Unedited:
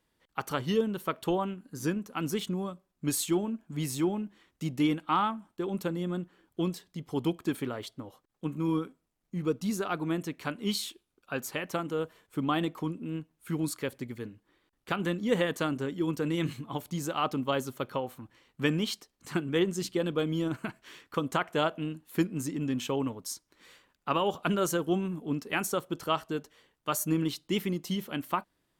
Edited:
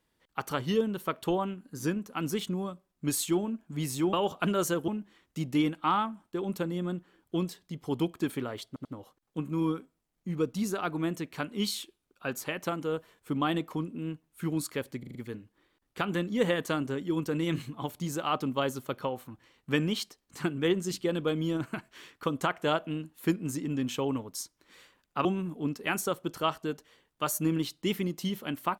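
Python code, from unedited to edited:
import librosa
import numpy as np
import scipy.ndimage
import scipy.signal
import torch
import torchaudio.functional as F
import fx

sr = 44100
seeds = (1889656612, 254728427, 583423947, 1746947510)

y = fx.edit(x, sr, fx.stutter(start_s=7.92, slice_s=0.09, count=3),
    fx.stutter(start_s=14.06, slice_s=0.04, count=5),
    fx.move(start_s=24.16, length_s=0.75, to_s=4.13), tone=tone)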